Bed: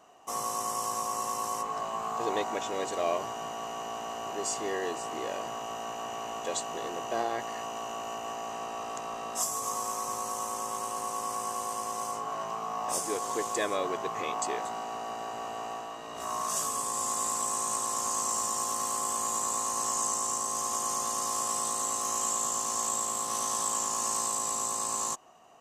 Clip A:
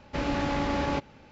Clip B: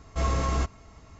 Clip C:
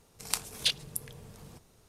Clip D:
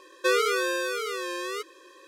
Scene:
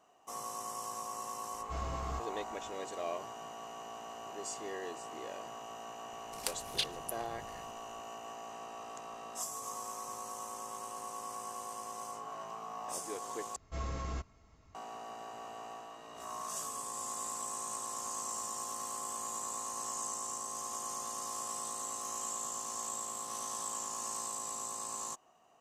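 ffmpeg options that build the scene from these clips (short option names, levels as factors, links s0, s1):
-filter_complex "[2:a]asplit=2[s0][s1];[0:a]volume=0.355[s2];[3:a]aphaser=in_gain=1:out_gain=1:delay=3.9:decay=0.39:speed=1.6:type=triangular[s3];[s2]asplit=2[s4][s5];[s4]atrim=end=13.564[s6];[s1]atrim=end=1.19,asetpts=PTS-STARTPTS,volume=0.237[s7];[s5]atrim=start=14.746[s8];[s0]atrim=end=1.19,asetpts=PTS-STARTPTS,volume=0.2,afade=t=in:d=0.004:c=hsin,afade=t=out:st=1.186:d=0.004:c=hsin,adelay=1540[s9];[s3]atrim=end=1.88,asetpts=PTS-STARTPTS,volume=0.447,afade=t=in:d=0.004:c=hsin,afade=t=out:st=1.876:d=0.004:c=hsin,adelay=6130[s10];[s6][s7]acrossfade=d=0.004:c1=hsin:c2=hsin[s11];[s11][s8]acrossfade=d=0.004:c1=hsin:c2=hsin[s12];[s12][s9][s10]amix=inputs=3:normalize=0"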